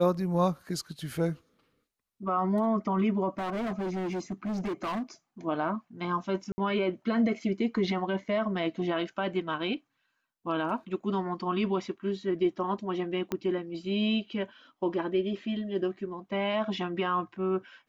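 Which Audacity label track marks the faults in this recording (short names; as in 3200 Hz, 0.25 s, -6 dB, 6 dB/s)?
3.290000	5.030000	clipped -29.5 dBFS
6.520000	6.580000	gap 60 ms
13.320000	13.320000	pop -17 dBFS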